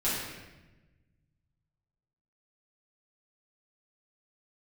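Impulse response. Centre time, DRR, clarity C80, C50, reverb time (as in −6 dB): 83 ms, −11.0 dB, 2.5 dB, −0.5 dB, 1.1 s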